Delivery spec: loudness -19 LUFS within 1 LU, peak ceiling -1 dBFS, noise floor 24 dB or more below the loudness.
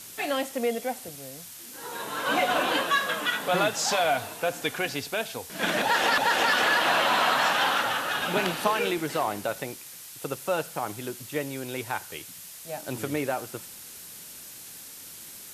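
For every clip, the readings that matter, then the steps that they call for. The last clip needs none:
noise floor -44 dBFS; noise floor target -51 dBFS; loudness -26.5 LUFS; peak -9.0 dBFS; loudness target -19.0 LUFS
-> denoiser 7 dB, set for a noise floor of -44 dBFS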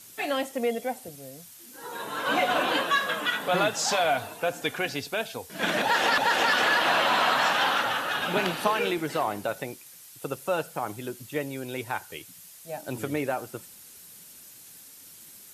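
noise floor -49 dBFS; noise floor target -51 dBFS
-> denoiser 6 dB, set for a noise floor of -49 dBFS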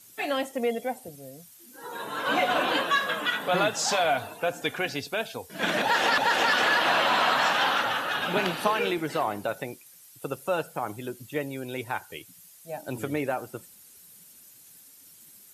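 noise floor -53 dBFS; loudness -26.5 LUFS; peak -9.0 dBFS; loudness target -19.0 LUFS
-> gain +7.5 dB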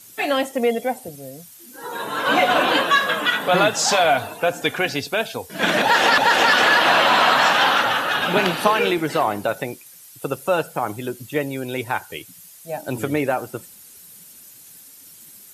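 loudness -19.0 LUFS; peak -1.5 dBFS; noise floor -45 dBFS

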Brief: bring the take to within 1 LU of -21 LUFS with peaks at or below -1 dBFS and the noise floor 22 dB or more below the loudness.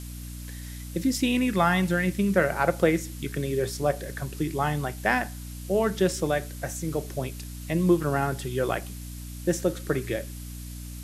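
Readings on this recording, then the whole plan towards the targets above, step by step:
hum 60 Hz; harmonics up to 300 Hz; hum level -36 dBFS; noise floor -38 dBFS; noise floor target -49 dBFS; loudness -26.5 LUFS; peak -7.5 dBFS; loudness target -21.0 LUFS
-> notches 60/120/180/240/300 Hz; noise print and reduce 11 dB; gain +5.5 dB

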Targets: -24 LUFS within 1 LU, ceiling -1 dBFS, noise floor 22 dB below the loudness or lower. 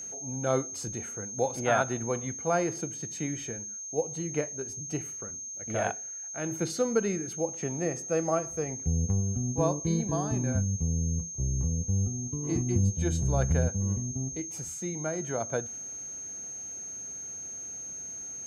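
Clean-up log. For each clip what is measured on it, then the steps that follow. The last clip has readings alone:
ticks 15/s; steady tone 6400 Hz; tone level -37 dBFS; loudness -31.0 LUFS; peak -13.0 dBFS; loudness target -24.0 LUFS
-> de-click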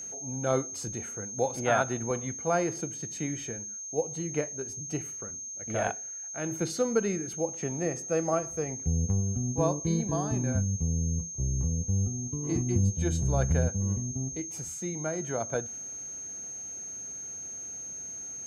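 ticks 0/s; steady tone 6400 Hz; tone level -37 dBFS
-> notch 6400 Hz, Q 30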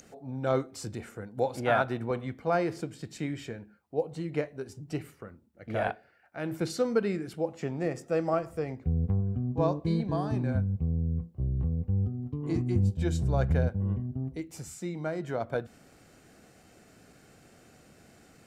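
steady tone none; loudness -31.0 LUFS; peak -13.5 dBFS; loudness target -24.0 LUFS
-> gain +7 dB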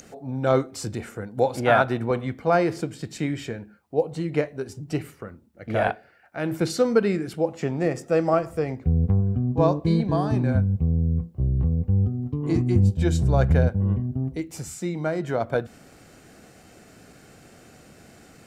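loudness -24.0 LUFS; peak -6.5 dBFS; noise floor -52 dBFS

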